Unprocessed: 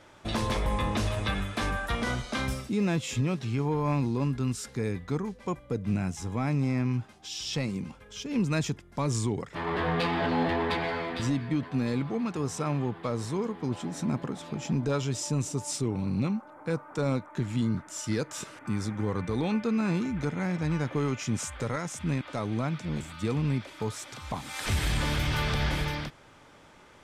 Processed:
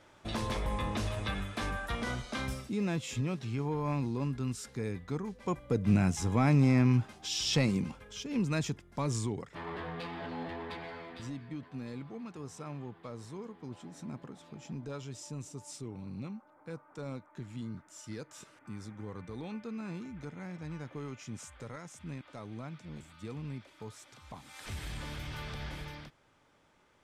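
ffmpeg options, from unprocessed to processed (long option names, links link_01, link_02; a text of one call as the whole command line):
ffmpeg -i in.wav -af "volume=3dB,afade=type=in:start_time=5.23:duration=0.73:silence=0.375837,afade=type=out:start_time=7.7:duration=0.57:silence=0.446684,afade=type=out:start_time=9.08:duration=0.83:silence=0.354813" out.wav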